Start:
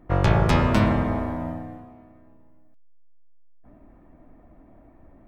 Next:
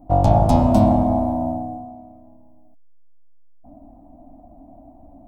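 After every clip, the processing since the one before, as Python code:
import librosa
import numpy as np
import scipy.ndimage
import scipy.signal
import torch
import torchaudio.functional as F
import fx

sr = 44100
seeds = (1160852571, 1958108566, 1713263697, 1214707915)

y = fx.curve_eq(x, sr, hz=(110.0, 160.0, 280.0, 410.0, 720.0, 1200.0, 1800.0, 3700.0, 9500.0), db=(0, -4, 7, -14, 11, -13, -24, -9, 1))
y = F.gain(torch.from_numpy(y), 3.5).numpy()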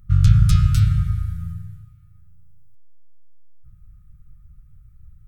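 y = fx.brickwall_bandstop(x, sr, low_hz=170.0, high_hz=1200.0)
y = F.gain(torch.from_numpy(y), 5.0).numpy()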